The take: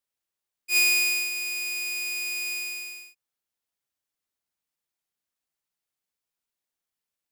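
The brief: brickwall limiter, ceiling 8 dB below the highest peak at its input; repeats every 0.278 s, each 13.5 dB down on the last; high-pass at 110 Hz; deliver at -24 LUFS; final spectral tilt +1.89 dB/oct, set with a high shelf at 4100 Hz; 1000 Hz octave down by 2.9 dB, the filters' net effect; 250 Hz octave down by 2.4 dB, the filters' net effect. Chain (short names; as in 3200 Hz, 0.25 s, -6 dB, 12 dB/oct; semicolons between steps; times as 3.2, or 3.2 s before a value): HPF 110 Hz; bell 250 Hz -4 dB; bell 1000 Hz -3.5 dB; high shelf 4100 Hz -7 dB; limiter -26 dBFS; feedback echo 0.278 s, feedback 21%, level -13.5 dB; gain +7.5 dB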